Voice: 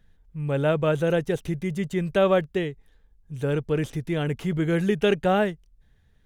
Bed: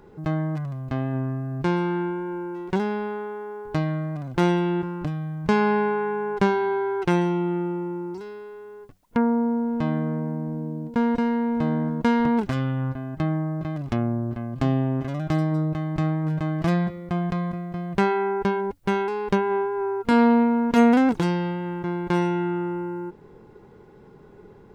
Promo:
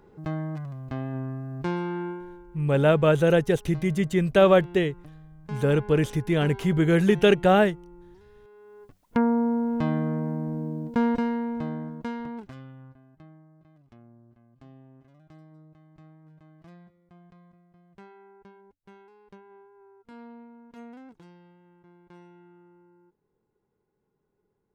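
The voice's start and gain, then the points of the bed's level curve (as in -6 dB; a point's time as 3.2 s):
2.20 s, +3.0 dB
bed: 2.11 s -5.5 dB
2.47 s -19 dB
8.24 s -19 dB
9 s -1 dB
11.05 s -1 dB
13.48 s -28.5 dB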